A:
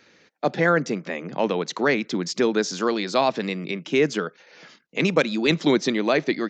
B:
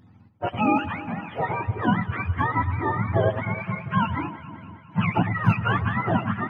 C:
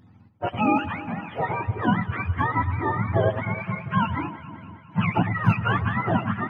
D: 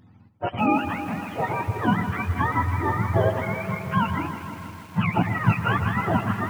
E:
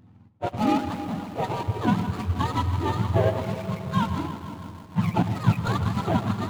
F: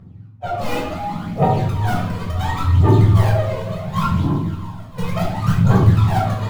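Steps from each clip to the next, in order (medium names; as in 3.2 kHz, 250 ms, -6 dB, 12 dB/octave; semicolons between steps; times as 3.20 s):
spectrum inverted on a logarithmic axis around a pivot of 650 Hz; peaking EQ 3.9 kHz +3 dB; echo whose repeats swap between lows and highs 102 ms, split 1.2 kHz, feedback 78%, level -12 dB; trim -1 dB
no audible change
bit-crushed delay 160 ms, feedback 80%, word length 7-bit, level -11.5 dB
median filter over 25 samples
in parallel at -8 dB: integer overflow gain 16.5 dB; on the sum: phaser 0.7 Hz, delay 2.1 ms, feedback 78%; simulated room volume 870 m³, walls furnished, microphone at 6.2 m; trim -10 dB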